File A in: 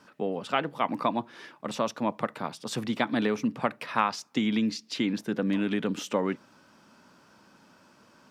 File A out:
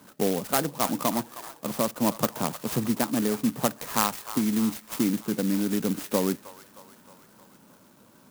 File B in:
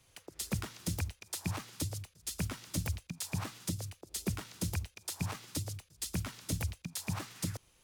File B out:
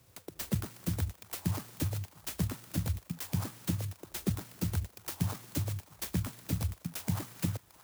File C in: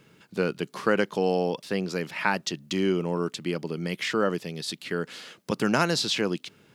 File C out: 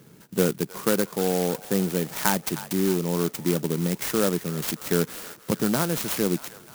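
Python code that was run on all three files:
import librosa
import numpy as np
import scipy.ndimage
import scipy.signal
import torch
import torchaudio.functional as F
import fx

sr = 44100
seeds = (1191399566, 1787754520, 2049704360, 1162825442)

y = scipy.signal.sosfilt(scipy.signal.butter(2, 76.0, 'highpass', fs=sr, output='sos'), x)
y = fx.low_shelf(y, sr, hz=320.0, db=6.0)
y = fx.rider(y, sr, range_db=4, speed_s=0.5)
y = fx.echo_wet_bandpass(y, sr, ms=312, feedback_pct=62, hz=1500.0, wet_db=-13.0)
y = fx.clock_jitter(y, sr, seeds[0], jitter_ms=0.11)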